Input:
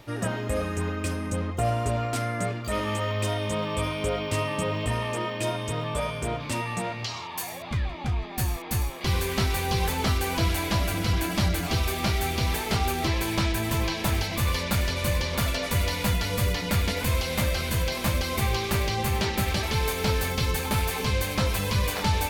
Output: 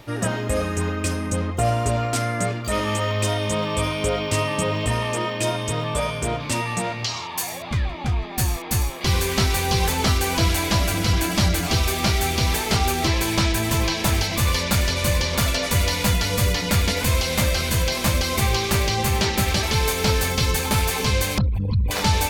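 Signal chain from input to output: 21.38–21.91 s: resonances exaggerated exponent 3; dynamic bell 6.5 kHz, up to +5 dB, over -47 dBFS, Q 0.97; trim +4.5 dB

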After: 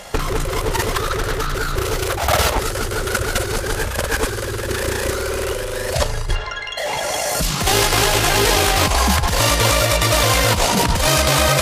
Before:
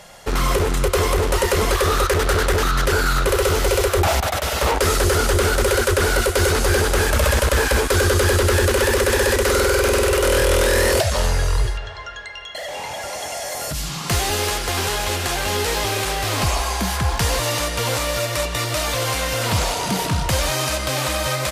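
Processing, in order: compressor with a negative ratio -21 dBFS, ratio -0.5; granular stretch 0.54×, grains 38 ms; trim +5 dB

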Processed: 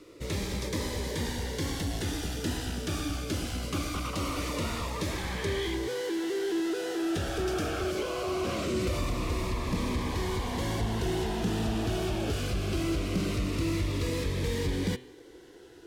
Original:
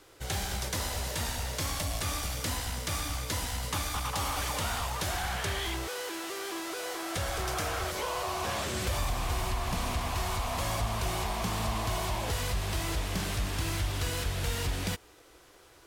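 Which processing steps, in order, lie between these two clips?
resonant low shelf 520 Hz +12 dB, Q 1.5; de-hum 127.4 Hz, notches 34; overdrive pedal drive 19 dB, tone 2.6 kHz, clips at -9.5 dBFS; Shepard-style phaser falling 0.22 Hz; trim -8 dB

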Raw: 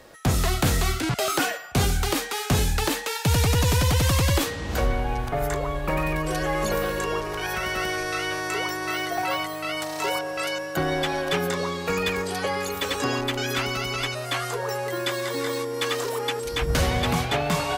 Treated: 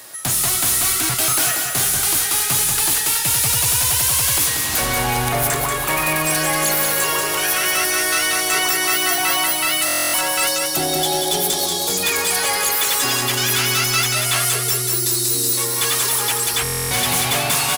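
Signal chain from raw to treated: spectral selection erased 14.49–15.57 s, 500–3600 Hz; RIAA curve recording; time-frequency box 10.49–12.03 s, 920–3000 Hz -16 dB; graphic EQ with 31 bands 125 Hz +9 dB, 500 Hz -9 dB, 10 kHz +7 dB; in parallel at +0.5 dB: gain riding 0.5 s; on the sum: saturation -16 dBFS, distortion -8 dB; on a send: feedback delay 186 ms, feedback 60%, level -5 dB; on the sum: buffer glitch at 9.86/16.63 s, samples 1024, times 11

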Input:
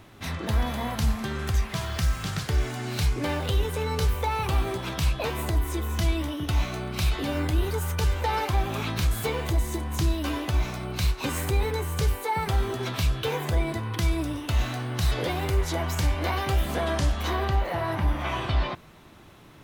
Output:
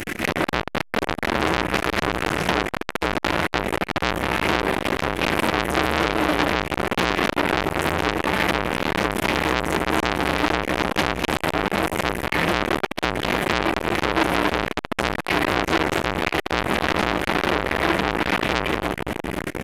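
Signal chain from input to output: one-bit delta coder 64 kbps, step -37.5 dBFS; feedback delay 166 ms, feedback 48%, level -15.5 dB; reverberation RT60 5.9 s, pre-delay 173 ms, DRR 10.5 dB; AM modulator 240 Hz, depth 70%; compression 10:1, threshold -28 dBFS, peak gain reduction 9.5 dB; flange 1.1 Hz, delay 9 ms, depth 4.5 ms, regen +53%; comb 5.6 ms, depth 49%; time-frequency box 1.56–3.46 s, 430–1500 Hz +7 dB; graphic EQ 125/250/500/1000/2000/4000/8000 Hz -12/+11/-8/-11/+9/-12/-6 dB; loudness maximiser +28 dB; transformer saturation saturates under 2.3 kHz

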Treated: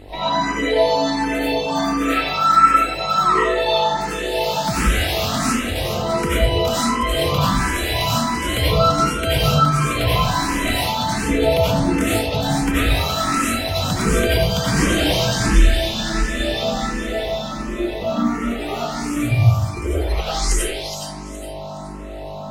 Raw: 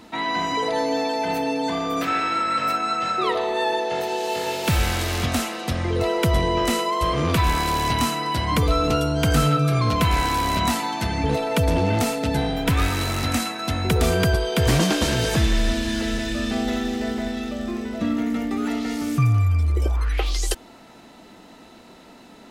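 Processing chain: reverb removal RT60 1.5 s; in parallel at +1 dB: peak limiter -17.5 dBFS, peak gain reduction 7 dB; on the sum: mains buzz 50 Hz, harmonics 22, -33 dBFS -3 dB/octave; on a send: feedback echo behind a high-pass 418 ms, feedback 31%, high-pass 1.9 kHz, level -5 dB; on the sum: algorithmic reverb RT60 0.9 s, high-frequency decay 0.7×, pre-delay 50 ms, DRR -9.5 dB; barber-pole phaser +1.4 Hz; trim -5.5 dB

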